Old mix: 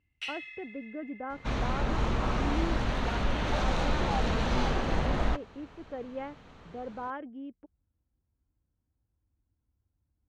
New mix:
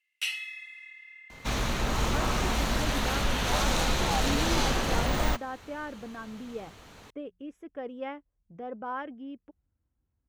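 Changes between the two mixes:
speech: entry +1.85 s; master: remove tape spacing loss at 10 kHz 22 dB

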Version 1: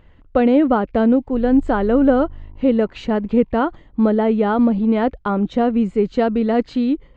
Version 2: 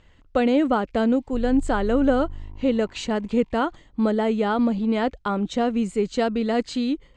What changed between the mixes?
speech -6.5 dB; master: remove tape spacing loss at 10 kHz 29 dB

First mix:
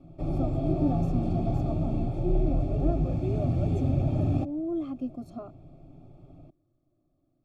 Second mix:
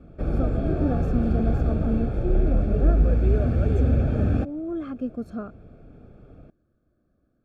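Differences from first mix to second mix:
background: add peaking EQ 170 Hz -6.5 dB 0.2 oct; master: remove static phaser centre 310 Hz, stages 8

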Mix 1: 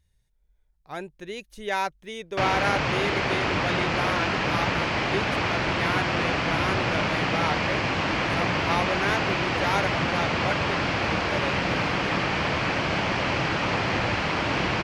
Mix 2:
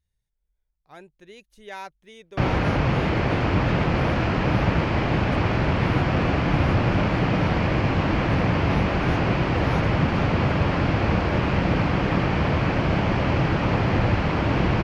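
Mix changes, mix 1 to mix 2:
speech -10.0 dB; background: add tilt EQ -3 dB/octave

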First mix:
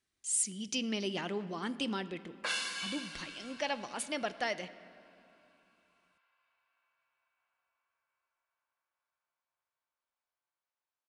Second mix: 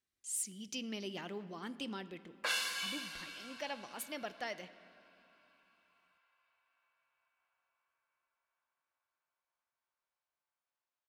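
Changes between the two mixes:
speech -7.0 dB; master: remove brick-wall FIR low-pass 11 kHz

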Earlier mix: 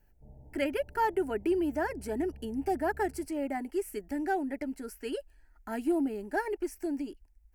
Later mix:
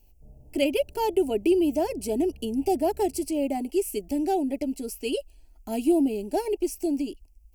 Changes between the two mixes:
speech +7.0 dB; master: add FFT filter 680 Hz 0 dB, 1.7 kHz -24 dB, 2.6 kHz +4 dB

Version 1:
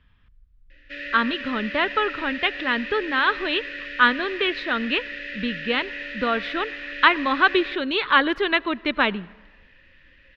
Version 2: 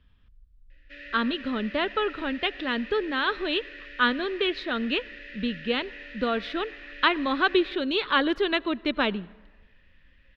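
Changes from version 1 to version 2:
speech: add graphic EQ 125/1000/2000 Hz -4/-5/-7 dB; background -9.5 dB

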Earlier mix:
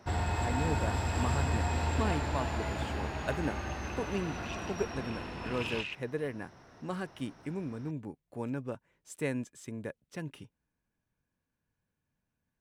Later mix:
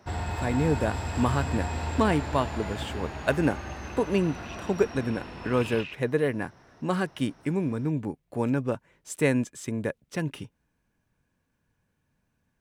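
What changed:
speech +10.0 dB; second sound: add distance through air 56 m

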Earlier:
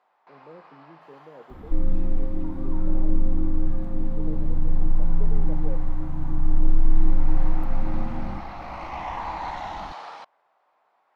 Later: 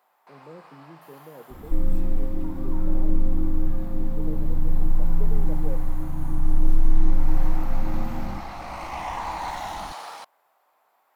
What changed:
speech: add bass shelf 190 Hz +9.5 dB; first sound: remove distance through air 160 m

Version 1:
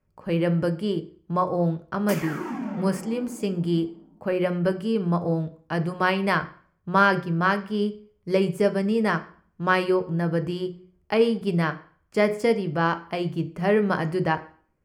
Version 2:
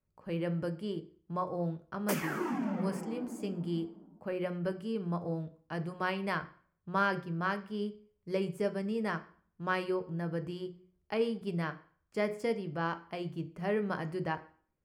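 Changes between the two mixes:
speech -11.0 dB; background: send -10.0 dB

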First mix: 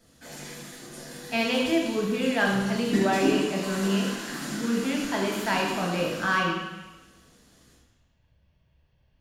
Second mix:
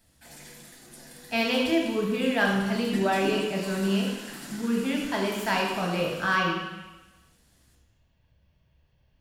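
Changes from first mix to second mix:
background: send -9.0 dB; master: add treble shelf 7.9 kHz +5 dB

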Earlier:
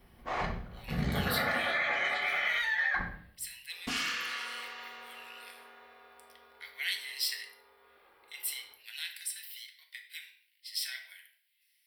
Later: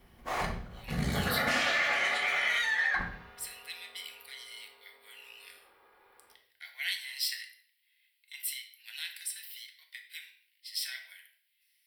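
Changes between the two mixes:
first sound: remove distance through air 130 m; second sound: entry -2.40 s

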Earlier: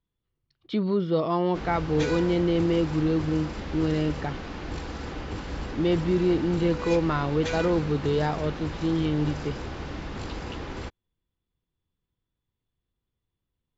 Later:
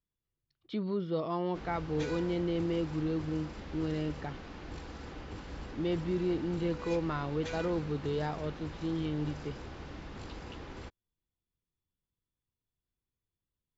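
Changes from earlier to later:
speech -8.5 dB; background -9.5 dB

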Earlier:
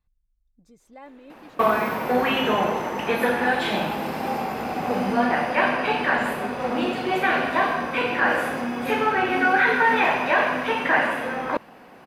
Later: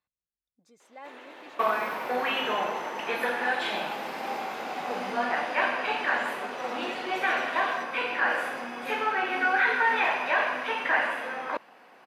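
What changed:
first sound +11.5 dB; second sound -5.0 dB; master: add frequency weighting A

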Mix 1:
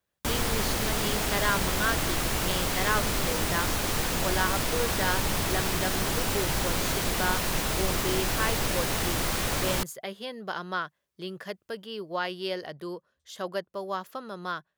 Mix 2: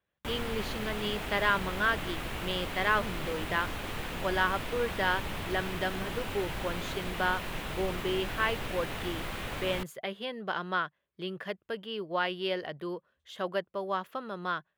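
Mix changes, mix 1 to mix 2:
background -8.0 dB; master: add resonant high shelf 4 kHz -8.5 dB, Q 1.5

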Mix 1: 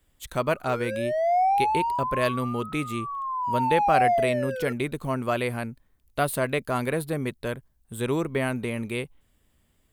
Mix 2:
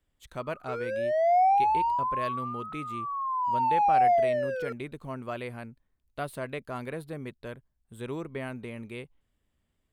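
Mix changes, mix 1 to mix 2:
speech -9.5 dB; master: add treble shelf 8.3 kHz -11 dB

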